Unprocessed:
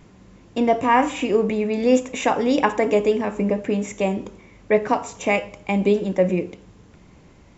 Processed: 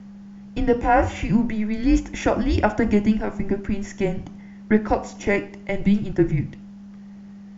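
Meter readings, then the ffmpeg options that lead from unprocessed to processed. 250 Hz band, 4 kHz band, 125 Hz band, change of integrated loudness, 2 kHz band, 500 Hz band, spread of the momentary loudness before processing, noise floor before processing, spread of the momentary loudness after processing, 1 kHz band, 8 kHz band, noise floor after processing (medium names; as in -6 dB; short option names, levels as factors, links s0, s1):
+1.5 dB, -5.0 dB, +5.0 dB, -1.0 dB, -1.5 dB, -4.5 dB, 6 LU, -50 dBFS, 22 LU, -3.0 dB, no reading, -41 dBFS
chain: -af "highpass=270,equalizer=f=350:t=q:w=4:g=4,equalizer=f=2600:t=q:w=4:g=-4,equalizer=f=3900:t=q:w=4:g=-3,lowpass=f=6400:w=0.5412,lowpass=f=6400:w=1.3066,aeval=exprs='val(0)+0.0126*sin(2*PI*410*n/s)':c=same,afreqshift=-210"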